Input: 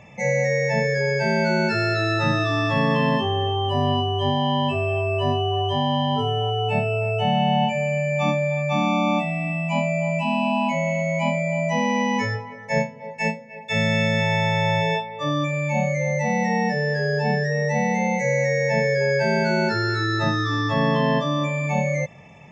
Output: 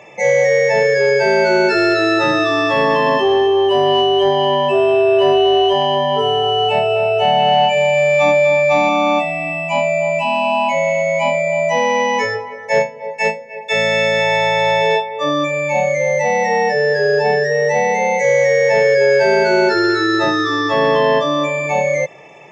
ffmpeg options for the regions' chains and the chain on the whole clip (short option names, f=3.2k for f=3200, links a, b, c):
-filter_complex "[0:a]asettb=1/sr,asplit=3[a][b][c];[a]atrim=end=2.824[d];[b]atrim=start=2.82:end=8.89,asetpts=PTS-STARTPTS,afade=t=in:d=0.004:c=qsin,afade=t=out:st=6.066:d=0.004:c=qsin,asplit=2[e][f];[f]adelay=26,volume=-10.5dB[g];[e][g]amix=inputs=2:normalize=0,atrim=end_sample=267687,aecho=1:1:247|494|741|988:0.282|0.107|0.0407|0.0155,atrim=end_sample=267687[h];[c]atrim=start=8.886[i];[d][h]acrossfade=d=0.004:c1=hsin:c2=qsin[j];[j][i]acrossfade=d=0.004:c1=qsin:c2=hsin,highpass=f=130:w=0.5412,highpass=f=130:w=1.3066,lowshelf=f=280:t=q:w=3:g=-8,acontrast=88"